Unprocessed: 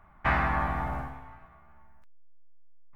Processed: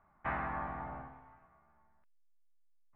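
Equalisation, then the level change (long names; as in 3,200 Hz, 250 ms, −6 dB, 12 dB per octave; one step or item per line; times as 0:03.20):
low-pass filter 2,300 Hz 6 dB per octave
high-frequency loss of the air 340 metres
low-shelf EQ 120 Hz −12 dB
−7.0 dB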